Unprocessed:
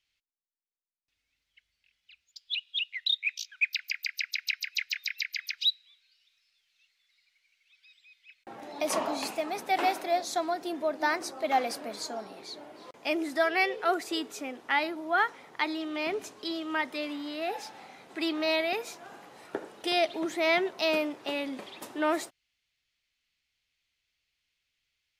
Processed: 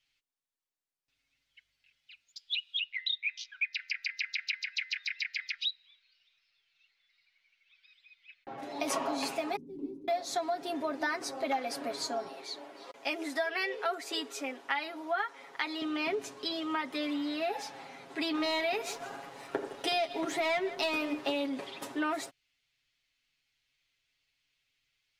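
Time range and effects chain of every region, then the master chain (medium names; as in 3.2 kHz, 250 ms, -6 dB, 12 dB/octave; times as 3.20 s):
2.77–8.58 s: distance through air 140 m + de-hum 85.69 Hz, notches 24
9.56–10.08 s: block-companded coder 5-bit + inverse Chebyshev low-pass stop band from 640 Hz
12.28–15.82 s: high-pass 170 Hz + bass shelf 240 Hz -12 dB
18.34–21.46 s: hum notches 50/100/150/200/250/300/350/400 Hz + waveshaping leveller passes 1 + delay 161 ms -18.5 dB
whole clip: treble shelf 11 kHz -7 dB; comb 7.3 ms, depth 78%; compression 5:1, threshold -29 dBFS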